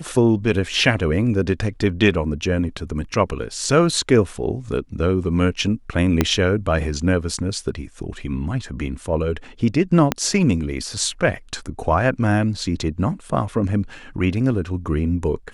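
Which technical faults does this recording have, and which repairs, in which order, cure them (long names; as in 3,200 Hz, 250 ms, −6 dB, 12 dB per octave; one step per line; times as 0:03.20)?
0:06.21: click −2 dBFS
0:10.12: click −3 dBFS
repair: click removal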